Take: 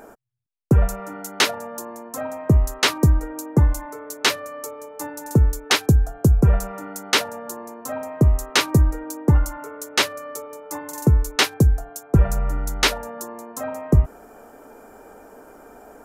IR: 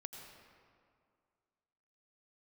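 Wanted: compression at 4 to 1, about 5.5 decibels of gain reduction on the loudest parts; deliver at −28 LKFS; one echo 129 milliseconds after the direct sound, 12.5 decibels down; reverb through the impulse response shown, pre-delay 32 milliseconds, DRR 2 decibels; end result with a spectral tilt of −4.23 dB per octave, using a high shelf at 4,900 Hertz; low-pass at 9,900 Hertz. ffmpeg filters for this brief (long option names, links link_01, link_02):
-filter_complex "[0:a]lowpass=9900,highshelf=frequency=4900:gain=4,acompressor=threshold=-17dB:ratio=4,aecho=1:1:129:0.237,asplit=2[link_01][link_02];[1:a]atrim=start_sample=2205,adelay=32[link_03];[link_02][link_03]afir=irnorm=-1:irlink=0,volume=1.5dB[link_04];[link_01][link_04]amix=inputs=2:normalize=0,volume=-5dB"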